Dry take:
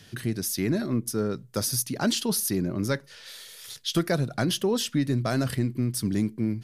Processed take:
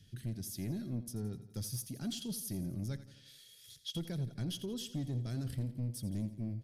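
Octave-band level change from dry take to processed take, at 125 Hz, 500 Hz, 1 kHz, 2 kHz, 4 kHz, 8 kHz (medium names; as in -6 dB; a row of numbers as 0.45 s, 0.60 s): -8.5 dB, -19.0 dB, -23.5 dB, -22.5 dB, -13.5 dB, -15.0 dB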